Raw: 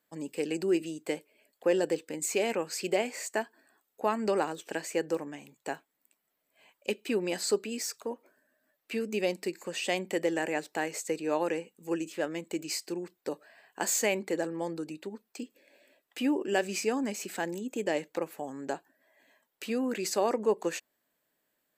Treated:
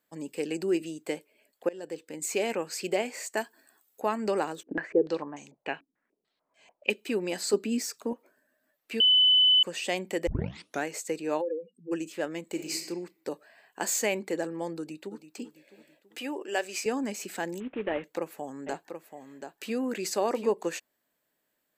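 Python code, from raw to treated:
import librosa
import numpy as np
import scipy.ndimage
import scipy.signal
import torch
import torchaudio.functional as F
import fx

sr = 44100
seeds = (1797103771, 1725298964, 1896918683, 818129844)

y = fx.high_shelf(x, sr, hz=4100.0, db=10.5, at=(3.37, 4.02))
y = fx.filter_held_lowpass(y, sr, hz=6.8, low_hz=270.0, high_hz=6400.0, at=(4.63, 6.9))
y = fx.peak_eq(y, sr, hz=250.0, db=10.0, octaves=0.77, at=(7.53, 8.13))
y = fx.spec_expand(y, sr, power=3.8, at=(11.4, 11.91), fade=0.02)
y = fx.reverb_throw(y, sr, start_s=12.44, length_s=0.4, rt60_s=0.84, drr_db=4.0)
y = fx.echo_throw(y, sr, start_s=14.78, length_s=0.49, ms=330, feedback_pct=50, wet_db=-11.5)
y = fx.highpass(y, sr, hz=470.0, slope=12, at=(16.19, 16.86))
y = fx.cvsd(y, sr, bps=16000, at=(17.6, 18.04))
y = fx.echo_single(y, sr, ms=732, db=-8.0, at=(18.66, 20.49), fade=0.02)
y = fx.edit(y, sr, fx.fade_in_from(start_s=1.69, length_s=0.63, floor_db=-23.5),
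    fx.bleep(start_s=9.0, length_s=0.63, hz=3010.0, db=-17.0),
    fx.tape_start(start_s=10.27, length_s=0.58), tone=tone)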